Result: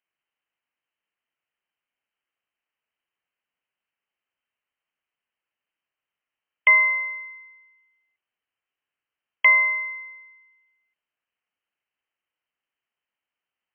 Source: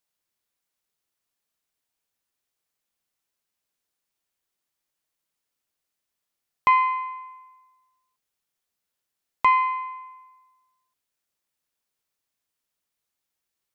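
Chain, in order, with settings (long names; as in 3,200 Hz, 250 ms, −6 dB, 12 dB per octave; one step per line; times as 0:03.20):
voice inversion scrambler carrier 3,100 Hz
spectral tilt +2.5 dB per octave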